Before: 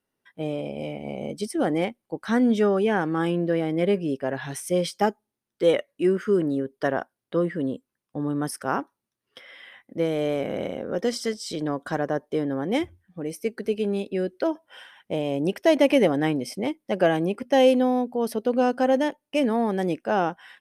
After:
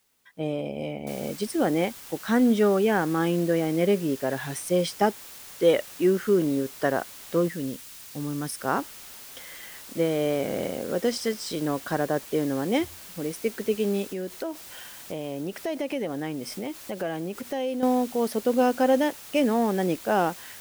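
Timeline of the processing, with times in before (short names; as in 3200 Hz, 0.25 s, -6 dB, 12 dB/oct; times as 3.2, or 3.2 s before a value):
1.07 noise floor step -70 dB -44 dB
7.48–8.6 bell 590 Hz -7.5 dB 2.6 oct
14.1–17.83 compressor 2.5:1, threshold -31 dBFS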